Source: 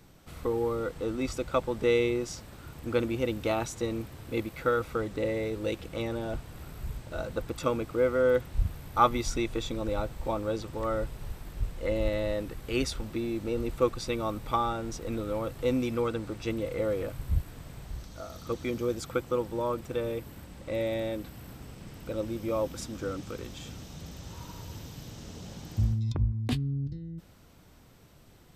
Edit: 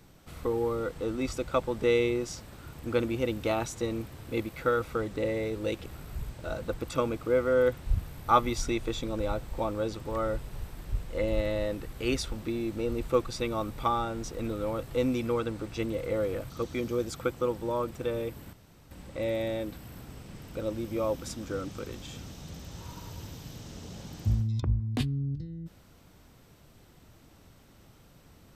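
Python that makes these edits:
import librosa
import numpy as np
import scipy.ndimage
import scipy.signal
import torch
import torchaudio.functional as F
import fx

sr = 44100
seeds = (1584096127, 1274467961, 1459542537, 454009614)

y = fx.edit(x, sr, fx.cut(start_s=5.86, length_s=0.68),
    fx.cut(start_s=17.18, length_s=1.22),
    fx.insert_room_tone(at_s=20.43, length_s=0.38), tone=tone)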